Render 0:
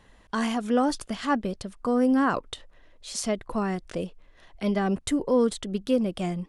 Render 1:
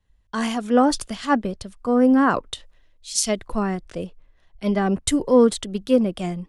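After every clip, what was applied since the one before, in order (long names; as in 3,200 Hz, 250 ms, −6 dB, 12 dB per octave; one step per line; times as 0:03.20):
multiband upward and downward expander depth 70%
level +4.5 dB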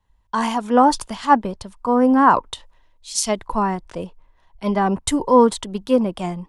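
parametric band 940 Hz +14.5 dB 0.44 octaves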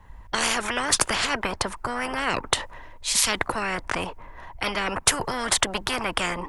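high shelf with overshoot 2,600 Hz −7 dB, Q 1.5
every bin compressed towards the loudest bin 10 to 1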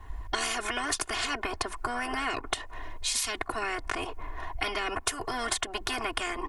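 downward compressor 6 to 1, threshold −32 dBFS, peak gain reduction 17 dB
comb filter 2.8 ms, depth 99%
level +1 dB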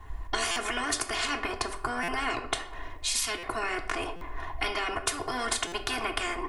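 on a send at −6 dB: convolution reverb RT60 0.75 s, pre-delay 4 ms
on the sum: buffer that repeats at 0:00.51/0:02.03/0:03.38/0:04.16/0:05.67, samples 256, times 8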